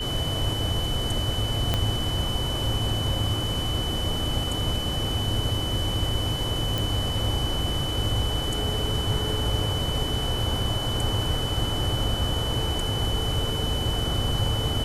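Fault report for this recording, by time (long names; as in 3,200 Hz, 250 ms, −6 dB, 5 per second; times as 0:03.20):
whistle 3,000 Hz −30 dBFS
0:01.74: click −9 dBFS
0:06.78: click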